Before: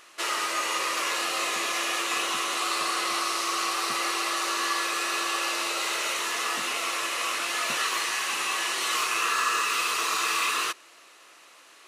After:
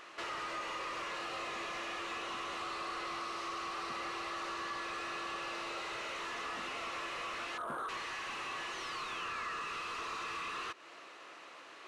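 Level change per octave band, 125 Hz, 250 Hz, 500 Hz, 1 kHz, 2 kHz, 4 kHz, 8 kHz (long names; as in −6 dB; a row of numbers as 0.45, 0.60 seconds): can't be measured, −8.5 dB, −9.0 dB, −11.0 dB, −13.0 dB, −15.5 dB, −22.5 dB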